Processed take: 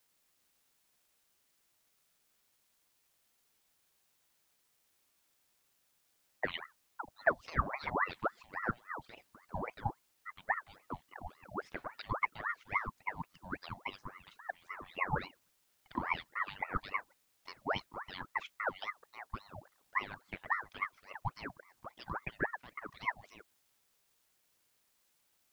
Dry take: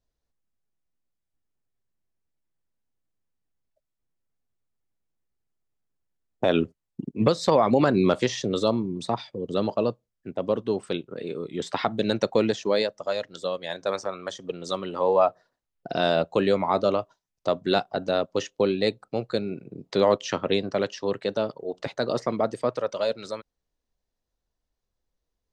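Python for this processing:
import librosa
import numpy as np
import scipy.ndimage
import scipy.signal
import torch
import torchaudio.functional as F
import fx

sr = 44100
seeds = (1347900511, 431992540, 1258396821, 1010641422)

y = fx.wah_lfo(x, sr, hz=3.1, low_hz=240.0, high_hz=2900.0, q=6.2)
y = fx.quant_dither(y, sr, seeds[0], bits=12, dither='triangular')
y = fx.ring_lfo(y, sr, carrier_hz=1000.0, swing_pct=65, hz=3.6)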